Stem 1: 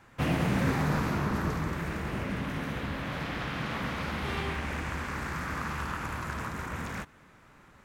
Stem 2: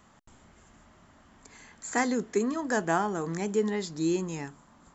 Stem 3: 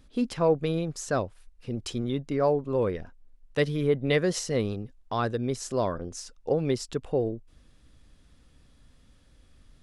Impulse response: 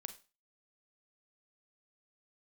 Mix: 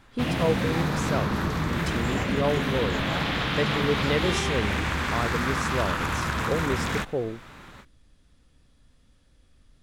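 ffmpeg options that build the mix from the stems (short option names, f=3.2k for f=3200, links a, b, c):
-filter_complex "[0:a]dynaudnorm=f=260:g=3:m=11dB,equalizer=f=3.6k:t=o:w=0.69:g=7.5,acompressor=threshold=-22dB:ratio=6,volume=-1dB[a];[1:a]adelay=200,volume=-9.5dB[b];[2:a]volume=-2dB[c];[a][b][c]amix=inputs=3:normalize=0"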